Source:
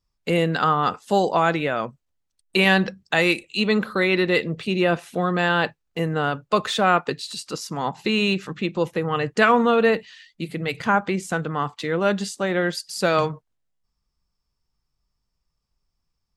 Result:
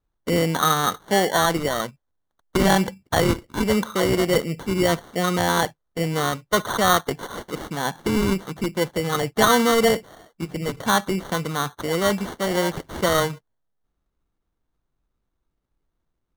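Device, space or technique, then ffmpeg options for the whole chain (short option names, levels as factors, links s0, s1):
crushed at another speed: -af "asetrate=22050,aresample=44100,acrusher=samples=35:mix=1:aa=0.000001,asetrate=88200,aresample=44100"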